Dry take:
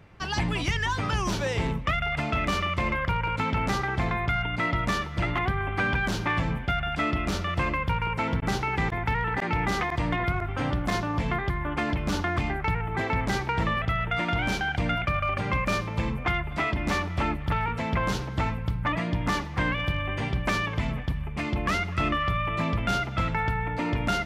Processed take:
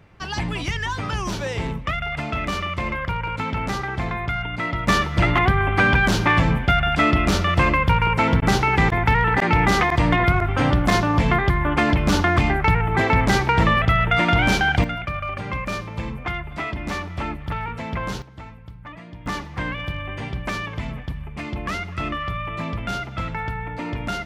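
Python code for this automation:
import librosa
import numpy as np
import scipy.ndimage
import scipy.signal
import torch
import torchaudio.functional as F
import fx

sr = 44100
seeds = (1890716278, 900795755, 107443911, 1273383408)

y = fx.gain(x, sr, db=fx.steps((0.0, 1.0), (4.88, 9.0), (14.84, -1.0), (18.22, -12.0), (19.26, -1.0)))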